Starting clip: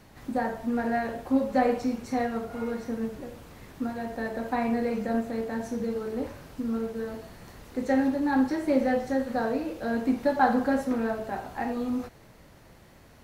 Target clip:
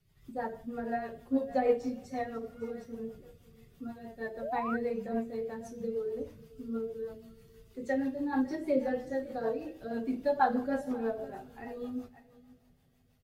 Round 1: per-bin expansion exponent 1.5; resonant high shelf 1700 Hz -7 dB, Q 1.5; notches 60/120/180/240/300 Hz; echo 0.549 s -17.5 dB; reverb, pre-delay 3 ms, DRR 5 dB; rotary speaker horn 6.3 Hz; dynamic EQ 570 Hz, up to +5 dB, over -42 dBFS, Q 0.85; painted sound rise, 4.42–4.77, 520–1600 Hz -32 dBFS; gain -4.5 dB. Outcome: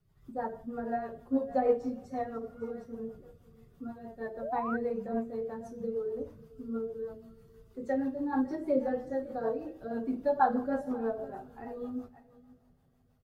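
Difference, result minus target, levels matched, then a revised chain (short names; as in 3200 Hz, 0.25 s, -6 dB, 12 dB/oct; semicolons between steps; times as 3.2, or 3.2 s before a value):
4000 Hz band -8.5 dB
per-bin expansion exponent 1.5; notches 60/120/180/240/300 Hz; echo 0.549 s -17.5 dB; reverb, pre-delay 3 ms, DRR 5 dB; rotary speaker horn 6.3 Hz; dynamic EQ 570 Hz, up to +5 dB, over -42 dBFS, Q 0.85; painted sound rise, 4.42–4.77, 520–1600 Hz -32 dBFS; gain -4.5 dB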